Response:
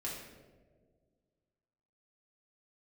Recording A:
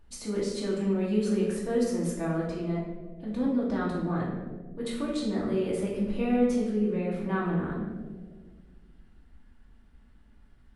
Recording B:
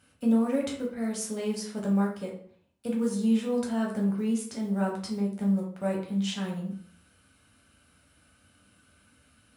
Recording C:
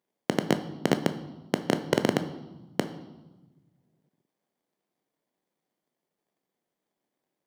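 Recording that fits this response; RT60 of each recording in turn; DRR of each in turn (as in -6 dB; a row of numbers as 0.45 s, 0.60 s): A; 1.7 s, 0.55 s, 1.2 s; -5.5 dB, -2.0 dB, 8.5 dB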